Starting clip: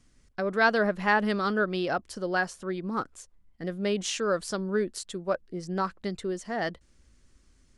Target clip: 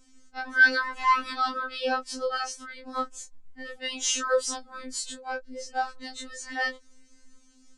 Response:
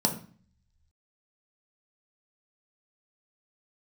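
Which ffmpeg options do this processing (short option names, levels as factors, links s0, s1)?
-af "afftfilt=real='re':imag='-im':win_size=2048:overlap=0.75,lowpass=f=7500:t=q:w=1.8,afftfilt=real='re*3.46*eq(mod(b,12),0)':imag='im*3.46*eq(mod(b,12),0)':win_size=2048:overlap=0.75,volume=2.24"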